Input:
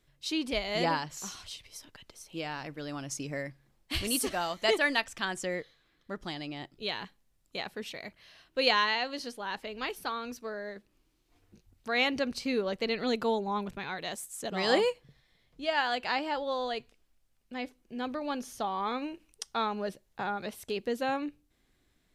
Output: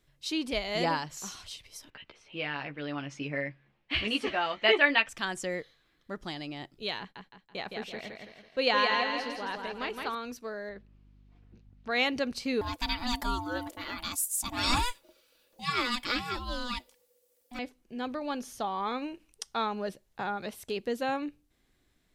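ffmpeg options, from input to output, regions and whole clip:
-filter_complex "[0:a]asettb=1/sr,asplit=3[a][b][c];[a]atrim=end=1.904[d];[b]atrim=start=1.9:end=5.09,asetpts=PTS-STARTPTS,afade=t=in:d=0.004:c=qsin,afade=t=out:st=3.186:d=0.004:c=qsin,lowpass=f=2.6k:t=q:w=2,lowshelf=f=77:g=-11.5,asplit=2[e][f];[f]adelay=14,volume=-5dB[g];[e][g]amix=inputs=2:normalize=0,atrim=end_sample=140679[h];[c]atrim=start=5.086[i];[d][h]acrossfade=d=0.004:c1=hsin:c2=qsin[j];[j][i]acrossfade=d=0.004:c1=qsin:c2=hsin,asettb=1/sr,asplit=3[k][l][m];[k]atrim=end=6.994[n];[l]atrim=start=6.99:end=10.15,asetpts=PTS-STARTPTS,afade=t=in:d=0.004:c=qsin,afade=t=out:st=3.156:d=0.004:c=qsin,aemphasis=mode=reproduction:type=cd,agate=range=-16dB:threshold=-59dB:ratio=16:release=100:detection=peak,aecho=1:1:165|330|495|660|825:0.631|0.271|0.117|0.0502|0.0216,atrim=end_sample=139356[o];[m]atrim=start=10.146[p];[n][o]acrossfade=d=0.004:c1=hsin:c2=qsin[q];[q][p]acrossfade=d=0.004:c1=qsin:c2=hsin,asettb=1/sr,asplit=3[r][s][t];[r]atrim=end=10.694[u];[s]atrim=start=10.69:end=11.91,asetpts=PTS-STARTPTS,afade=t=in:d=0.004:c=qsin,afade=t=out:st=1.216:d=0.004:c=qsin,lowpass=3.3k,aeval=exprs='val(0)+0.00141*(sin(2*PI*50*n/s)+sin(2*PI*2*50*n/s)/2+sin(2*PI*3*50*n/s)/3+sin(2*PI*4*50*n/s)/4+sin(2*PI*5*50*n/s)/5)':c=same[v];[t]atrim=start=11.906[w];[u][v]acrossfade=d=0.004:c1=hsin:c2=qsin[x];[x][w]acrossfade=d=0.004:c1=qsin:c2=hsin,asettb=1/sr,asplit=3[y][z][aa];[y]atrim=end=12.614[ab];[z]atrim=start=12.61:end=17.59,asetpts=PTS-STARTPTS,afade=t=in:d=0.004:c=qsin,afade=t=out:st=4.976:d=0.004:c=qsin,aemphasis=mode=production:type=75fm,aeval=exprs='val(0)*sin(2*PI*490*n/s)':c=same,aecho=1:1:3.5:0.48,atrim=end_sample=219618[ac];[aa]atrim=start=17.586[ad];[ab][ac]acrossfade=d=0.004:c1=hsin:c2=qsin[ae];[ae][ad]acrossfade=d=0.004:c1=qsin:c2=hsin"

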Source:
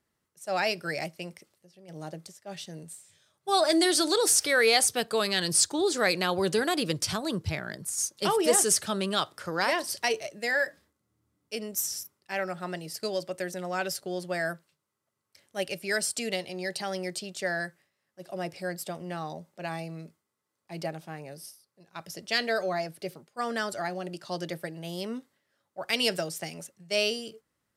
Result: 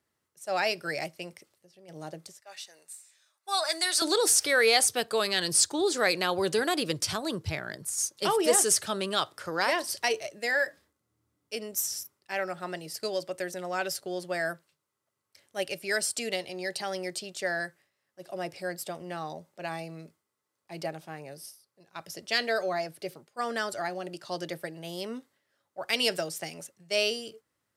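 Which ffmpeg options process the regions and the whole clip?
-filter_complex "[0:a]asettb=1/sr,asplit=3[a][b][c];[a]atrim=end=2.404[d];[b]atrim=start=2.4:end=4.02,asetpts=PTS-STARTPTS,afade=t=in:d=0.004:c=qsin,afade=t=out:st=1.616:d=0.004:c=qsin,highpass=980,bandreject=f=3.2k:w=7.7[e];[c]atrim=start=4.016[f];[d][e]acrossfade=d=0.004:c1=hsin:c2=qsin[g];[g][f]acrossfade=d=0.004:c1=qsin:c2=hsin,highpass=71,equalizer=f=190:t=o:w=0.71:g=-5.5"

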